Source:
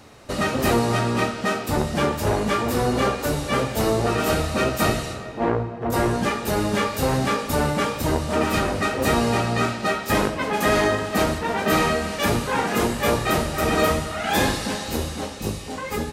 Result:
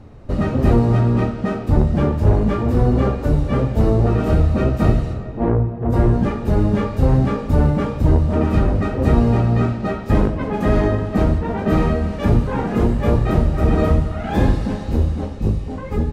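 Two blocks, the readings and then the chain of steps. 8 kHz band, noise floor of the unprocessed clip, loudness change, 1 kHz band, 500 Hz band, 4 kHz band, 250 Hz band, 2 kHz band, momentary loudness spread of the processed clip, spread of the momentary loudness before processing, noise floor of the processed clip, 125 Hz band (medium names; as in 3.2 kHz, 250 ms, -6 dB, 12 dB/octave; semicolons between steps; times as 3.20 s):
under -15 dB, -33 dBFS, +4.0 dB, -3.0 dB, +1.0 dB, -12.0 dB, +5.5 dB, -7.5 dB, 6 LU, 6 LU, -29 dBFS, +11.0 dB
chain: tilt EQ -4.5 dB/octave; trim -3.5 dB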